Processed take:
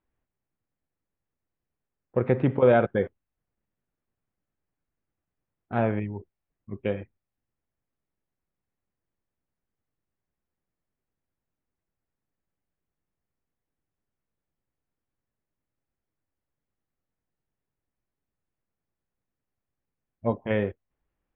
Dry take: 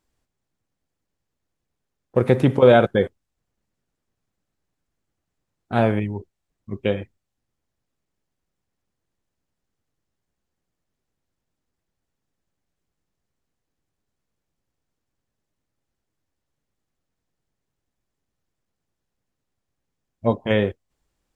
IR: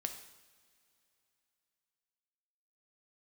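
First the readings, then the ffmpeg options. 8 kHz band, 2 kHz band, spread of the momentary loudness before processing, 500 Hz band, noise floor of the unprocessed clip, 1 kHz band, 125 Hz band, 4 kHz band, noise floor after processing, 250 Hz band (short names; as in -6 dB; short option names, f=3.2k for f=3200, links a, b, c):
n/a, -6.5 dB, 15 LU, -6.0 dB, -81 dBFS, -6.0 dB, -6.0 dB, -14.5 dB, under -85 dBFS, -6.0 dB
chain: -af "lowpass=f=2.6k:w=0.5412,lowpass=f=2.6k:w=1.3066,volume=-6dB"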